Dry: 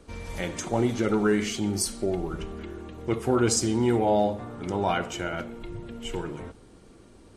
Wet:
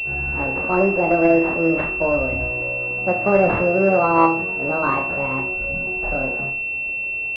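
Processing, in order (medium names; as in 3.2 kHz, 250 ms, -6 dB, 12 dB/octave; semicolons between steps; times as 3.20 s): hum notches 50/100/150/200 Hz; pitch shift +8 st; flutter echo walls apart 5.2 m, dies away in 0.3 s; class-D stage that switches slowly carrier 2.7 kHz; trim +6.5 dB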